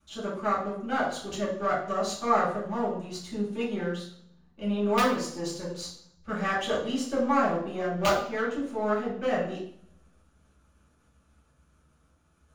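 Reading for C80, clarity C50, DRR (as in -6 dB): 8.0 dB, 4.5 dB, -10.0 dB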